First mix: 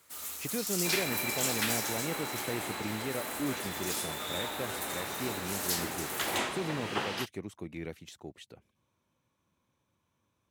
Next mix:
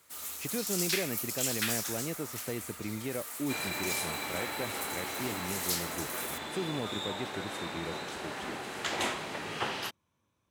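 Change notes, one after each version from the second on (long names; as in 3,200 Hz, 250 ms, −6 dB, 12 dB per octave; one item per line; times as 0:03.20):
second sound: entry +2.65 s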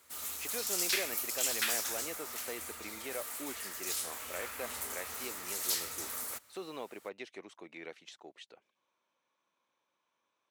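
speech: add band-pass filter 540–5,800 Hz
second sound: muted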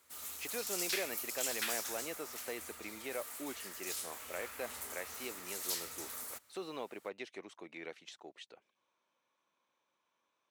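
background −5.0 dB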